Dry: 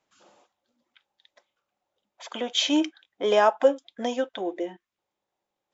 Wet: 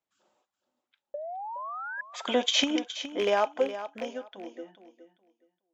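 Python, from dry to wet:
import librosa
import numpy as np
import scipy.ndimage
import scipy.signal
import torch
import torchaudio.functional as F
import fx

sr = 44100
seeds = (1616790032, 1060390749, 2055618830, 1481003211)

y = fx.rattle_buzz(x, sr, strikes_db=-34.0, level_db=-18.0)
y = fx.doppler_pass(y, sr, speed_mps=10, closest_m=2.3, pass_at_s=2.48)
y = fx.spec_paint(y, sr, seeds[0], shape='rise', start_s=1.14, length_s=0.87, low_hz=570.0, high_hz=1700.0, level_db=-19.0)
y = fx.over_compress(y, sr, threshold_db=-27.0, ratio=-0.5)
y = fx.echo_feedback(y, sr, ms=417, feedback_pct=20, wet_db=-12)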